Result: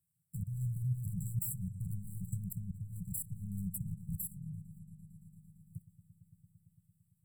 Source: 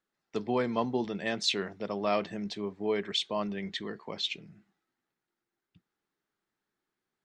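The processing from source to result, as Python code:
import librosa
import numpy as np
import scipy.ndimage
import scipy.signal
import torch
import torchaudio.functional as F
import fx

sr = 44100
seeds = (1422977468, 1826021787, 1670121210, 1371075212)

p1 = scipy.signal.medfilt(x, 5)
p2 = scipy.signal.sosfilt(scipy.signal.butter(2, 76.0, 'highpass', fs=sr, output='sos'), p1)
p3 = fx.peak_eq(p2, sr, hz=2800.0, db=-15.0, octaves=0.44)
p4 = fx.level_steps(p3, sr, step_db=21)
p5 = fx.fold_sine(p4, sr, drive_db=6, ceiling_db=-28.0)
p6 = fx.brickwall_bandstop(p5, sr, low_hz=170.0, high_hz=7500.0)
p7 = p6 + fx.echo_wet_lowpass(p6, sr, ms=113, feedback_pct=82, hz=3700.0, wet_db=-15.5, dry=0)
p8 = fx.band_squash(p7, sr, depth_pct=40)
y = p8 * 10.0 ** (12.5 / 20.0)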